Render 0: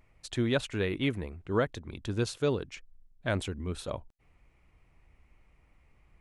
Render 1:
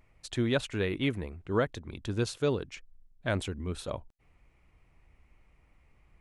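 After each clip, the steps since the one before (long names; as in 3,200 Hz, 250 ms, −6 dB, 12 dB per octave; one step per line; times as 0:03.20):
no processing that can be heard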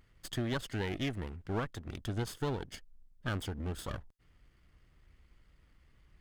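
lower of the sound and its delayed copy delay 0.61 ms
downward compressor 2.5 to 1, threshold −33 dBFS, peak gain reduction 7 dB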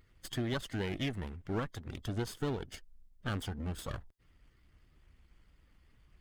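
spectral magnitudes quantised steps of 15 dB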